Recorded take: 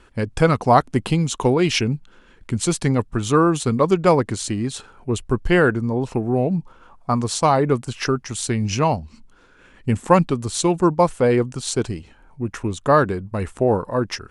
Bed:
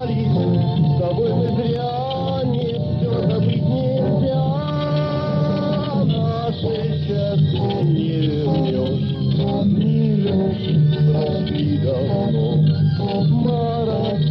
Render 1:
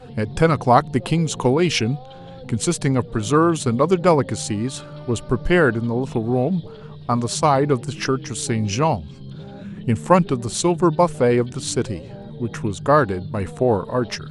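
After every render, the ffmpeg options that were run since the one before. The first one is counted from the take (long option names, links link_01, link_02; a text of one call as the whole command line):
ffmpeg -i in.wav -i bed.wav -filter_complex "[1:a]volume=-17.5dB[link_01];[0:a][link_01]amix=inputs=2:normalize=0" out.wav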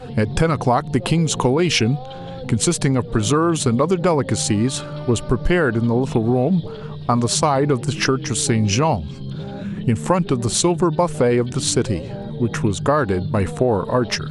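ffmpeg -i in.wav -filter_complex "[0:a]asplit=2[link_01][link_02];[link_02]alimiter=limit=-12dB:level=0:latency=1,volume=1dB[link_03];[link_01][link_03]amix=inputs=2:normalize=0,acompressor=threshold=-13dB:ratio=6" out.wav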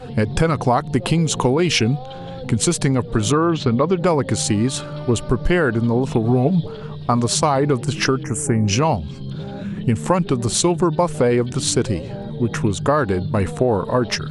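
ffmpeg -i in.wav -filter_complex "[0:a]asettb=1/sr,asplit=3[link_01][link_02][link_03];[link_01]atrim=end=3.324[link_04];[link_02]atrim=start=3.32:end=4.02,asetpts=PTS-STARTPTS,afade=type=in:duration=0.004:curve=qsin,afade=type=out:start_time=0.696:duration=0.004:curve=qsin,lowpass=frequency=4500:width=0.5412,lowpass=frequency=4500:width=1.3066[link_05];[link_03]atrim=start=4.016[link_06];[link_04][link_05]acrossfade=duration=0.004:curve1=hsin:curve2=qsin[link_07];[link_07][link_06]acrossfade=duration=0.004:curve1=qsin:curve2=hsin,asettb=1/sr,asplit=3[link_08][link_09][link_10];[link_08]atrim=end=6.244[link_11];[link_09]atrim=start=6.24:end=6.66,asetpts=PTS-STARTPTS,afade=type=in:duration=0.004:curve=qsin,afade=type=out:start_time=0.416:duration=0.004:curve=qsin,aecho=1:1:7.1:0.55,atrim=end_sample=18522[link_12];[link_10]atrim=start=6.656[link_13];[link_11][link_12]acrossfade=duration=0.004:curve1=hsin:curve2=qsin[link_14];[link_14][link_13]acrossfade=duration=0.004:curve1=qsin:curve2=hsin,asettb=1/sr,asplit=3[link_15][link_16][link_17];[link_15]atrim=end=8.234[link_18];[link_16]atrim=start=8.23:end=8.68,asetpts=PTS-STARTPTS,afade=type=in:duration=0.004:curve=qsin,afade=type=out:start_time=0.446:duration=0.004:curve=qsin,asuperstop=centerf=3900:order=4:qfactor=0.65[link_19];[link_17]atrim=start=8.676[link_20];[link_18][link_19]acrossfade=duration=0.004:curve1=hsin:curve2=qsin[link_21];[link_21][link_20]acrossfade=duration=0.004:curve1=qsin:curve2=hsin" out.wav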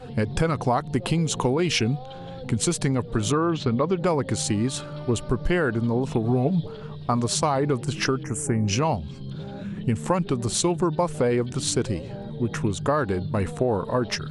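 ffmpeg -i in.wav -af "volume=-5.5dB" out.wav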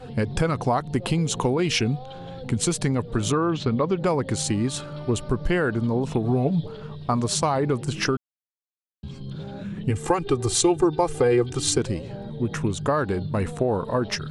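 ffmpeg -i in.wav -filter_complex "[0:a]asettb=1/sr,asplit=3[link_01][link_02][link_03];[link_01]atrim=end=9.904[link_04];[link_02]atrim=start=9.9:end=11.78,asetpts=PTS-STARTPTS,afade=type=in:duration=0.004:curve=qsin,afade=type=out:start_time=1.876:duration=0.004:curve=qsin,aecho=1:1:2.5:0.89,atrim=end_sample=82908[link_05];[link_03]atrim=start=11.776[link_06];[link_04][link_05]acrossfade=duration=0.004:curve1=hsin:curve2=qsin[link_07];[link_07][link_06]acrossfade=duration=0.004:curve1=qsin:curve2=hsin,asplit=3[link_08][link_09][link_10];[link_08]atrim=end=8.17,asetpts=PTS-STARTPTS,afade=type=out:start_time=8.166:duration=0.004:curve=hsin[link_11];[link_09]atrim=start=8.17:end=9.03,asetpts=PTS-STARTPTS,volume=0[link_12];[link_10]atrim=start=9.03,asetpts=PTS-STARTPTS,afade=type=in:duration=0.004:curve=hsin[link_13];[link_11][link_12][link_13]concat=n=3:v=0:a=1" out.wav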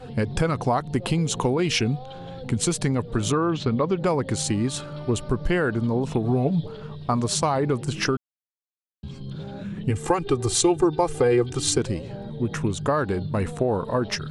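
ffmpeg -i in.wav -af anull out.wav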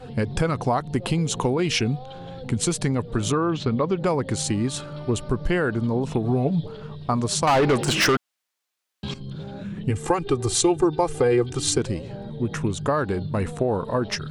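ffmpeg -i in.wav -filter_complex "[0:a]asettb=1/sr,asplit=3[link_01][link_02][link_03];[link_01]atrim=end=7.474[link_04];[link_02]atrim=start=7.47:end=9.14,asetpts=PTS-STARTPTS,afade=type=in:duration=0.004:curve=qsin,afade=type=out:start_time=1.666:duration=0.004:curve=qsin,asplit=2[link_05][link_06];[link_06]highpass=frequency=720:poles=1,volume=24dB,asoftclip=type=tanh:threshold=-11.5dB[link_07];[link_05][link_07]amix=inputs=2:normalize=0,lowpass=frequency=6400:poles=1,volume=-6dB[link_08];[link_03]atrim=start=9.136[link_09];[link_04][link_08]acrossfade=duration=0.004:curve1=hsin:curve2=qsin[link_10];[link_10][link_09]acrossfade=duration=0.004:curve1=qsin:curve2=hsin" out.wav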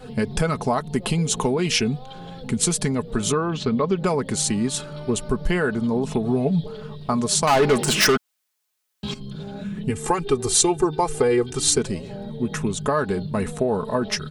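ffmpeg -i in.wav -af "highshelf=frequency=7500:gain=9,aecho=1:1:4.7:0.49" out.wav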